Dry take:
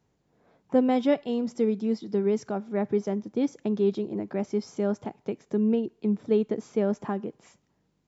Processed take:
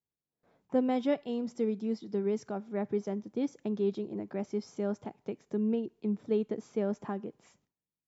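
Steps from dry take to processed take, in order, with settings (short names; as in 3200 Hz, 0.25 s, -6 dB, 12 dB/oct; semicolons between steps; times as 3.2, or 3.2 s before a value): gate with hold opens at -56 dBFS; gain -6 dB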